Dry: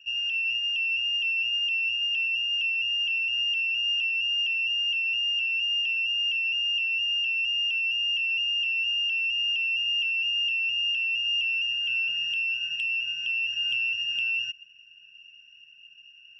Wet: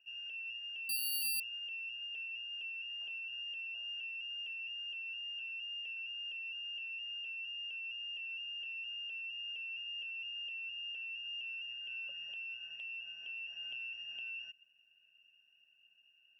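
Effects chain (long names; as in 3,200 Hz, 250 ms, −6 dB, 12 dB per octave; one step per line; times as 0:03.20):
resonant band-pass 670 Hz, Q 2.4
0:00.89–0:01.40: bad sample-rate conversion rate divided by 6×, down none, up zero stuff
level +3 dB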